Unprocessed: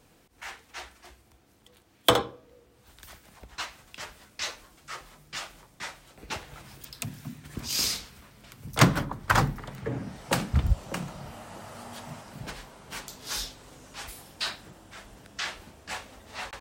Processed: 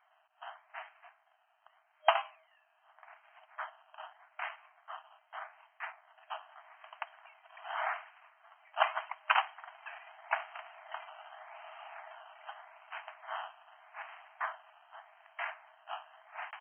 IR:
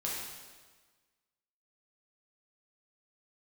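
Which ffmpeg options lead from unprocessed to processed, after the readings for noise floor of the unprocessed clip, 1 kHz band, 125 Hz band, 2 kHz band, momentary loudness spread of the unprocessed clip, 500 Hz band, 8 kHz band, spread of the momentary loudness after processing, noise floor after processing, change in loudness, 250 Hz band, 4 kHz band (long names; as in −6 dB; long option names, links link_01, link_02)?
−61 dBFS, −2.5 dB, below −40 dB, −4.5 dB, 22 LU, −8.0 dB, below −40 dB, 23 LU, −72 dBFS, −8.5 dB, below −40 dB, −13.5 dB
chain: -af "acrusher=samples=16:mix=1:aa=0.000001:lfo=1:lforange=9.6:lforate=0.83,afftfilt=real='re*between(b*sr/4096,620,3200)':imag='im*between(b*sr/4096,620,3200)':win_size=4096:overlap=0.75,volume=-3.5dB"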